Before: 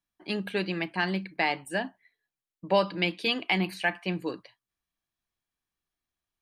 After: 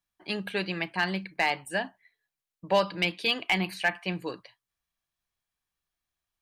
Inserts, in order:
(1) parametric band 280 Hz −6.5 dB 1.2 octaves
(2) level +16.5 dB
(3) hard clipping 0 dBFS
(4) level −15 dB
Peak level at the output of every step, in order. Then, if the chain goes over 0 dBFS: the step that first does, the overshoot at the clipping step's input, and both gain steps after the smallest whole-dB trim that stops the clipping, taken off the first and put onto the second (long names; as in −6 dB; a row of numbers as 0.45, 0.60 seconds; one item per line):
−12.5, +4.0, 0.0, −15.0 dBFS
step 2, 4.0 dB
step 2 +12.5 dB, step 4 −11 dB